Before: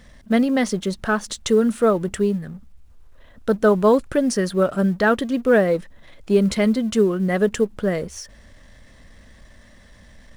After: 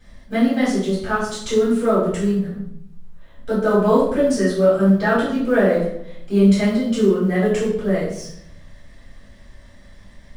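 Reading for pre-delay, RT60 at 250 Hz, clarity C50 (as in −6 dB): 3 ms, 1.0 s, 2.5 dB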